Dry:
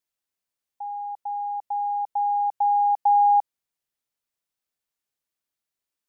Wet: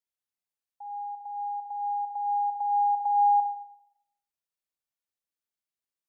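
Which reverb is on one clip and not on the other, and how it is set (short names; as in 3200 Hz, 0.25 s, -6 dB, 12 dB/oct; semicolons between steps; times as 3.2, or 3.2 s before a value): Schroeder reverb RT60 0.77 s, DRR 5.5 dB; gain -9 dB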